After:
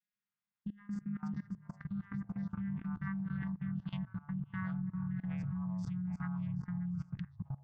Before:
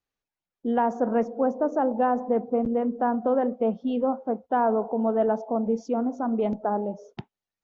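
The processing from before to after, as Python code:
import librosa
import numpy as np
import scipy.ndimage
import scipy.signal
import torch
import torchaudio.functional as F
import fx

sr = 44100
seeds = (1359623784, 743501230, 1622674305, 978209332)

p1 = fx.vocoder_glide(x, sr, note=56, semitones=-3)
p2 = fx.over_compress(p1, sr, threshold_db=-30.0, ratio=-1.0)
p3 = scipy.signal.sosfilt(scipy.signal.ellip(3, 1.0, 50, [160.0, 1700.0], 'bandstop', fs=sr, output='sos'), p2)
p4 = fx.peak_eq(p3, sr, hz=250.0, db=4.5, octaves=0.21)
p5 = p4 + fx.echo_stepped(p4, sr, ms=194, hz=310.0, octaves=1.4, feedback_pct=70, wet_db=-4.0, dry=0)
p6 = fx.echo_pitch(p5, sr, ms=125, semitones=-5, count=3, db_per_echo=-6.0)
p7 = fx.peak_eq(p6, sr, hz=760.0, db=6.5, octaves=2.5)
p8 = fx.level_steps(p7, sr, step_db=21)
y = F.gain(torch.from_numpy(p8), 5.0).numpy()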